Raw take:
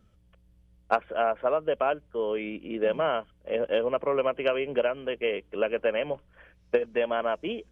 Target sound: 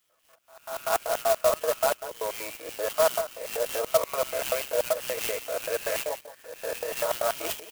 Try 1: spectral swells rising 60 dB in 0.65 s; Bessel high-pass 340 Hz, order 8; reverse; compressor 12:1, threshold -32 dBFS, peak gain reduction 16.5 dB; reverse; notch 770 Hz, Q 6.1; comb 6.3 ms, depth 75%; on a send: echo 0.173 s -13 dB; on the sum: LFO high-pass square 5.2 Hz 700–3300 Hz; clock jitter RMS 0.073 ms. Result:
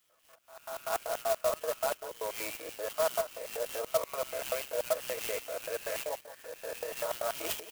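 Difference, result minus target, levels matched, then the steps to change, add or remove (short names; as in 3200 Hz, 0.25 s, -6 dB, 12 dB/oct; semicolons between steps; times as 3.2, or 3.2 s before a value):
compressor: peak gain reduction +7.5 dB
change: compressor 12:1, threshold -24 dBFS, peak gain reduction 9 dB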